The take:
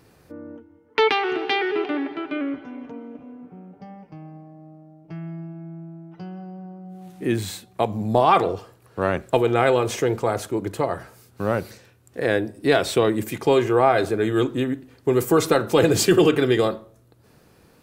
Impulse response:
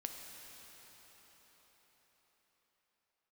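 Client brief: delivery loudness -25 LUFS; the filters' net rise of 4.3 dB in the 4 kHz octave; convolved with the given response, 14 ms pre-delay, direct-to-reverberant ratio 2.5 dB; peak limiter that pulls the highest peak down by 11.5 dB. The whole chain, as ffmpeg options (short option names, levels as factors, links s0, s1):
-filter_complex "[0:a]equalizer=f=4000:t=o:g=5.5,alimiter=limit=0.178:level=0:latency=1,asplit=2[s0][s1];[1:a]atrim=start_sample=2205,adelay=14[s2];[s1][s2]afir=irnorm=-1:irlink=0,volume=0.891[s3];[s0][s3]amix=inputs=2:normalize=0,volume=0.944"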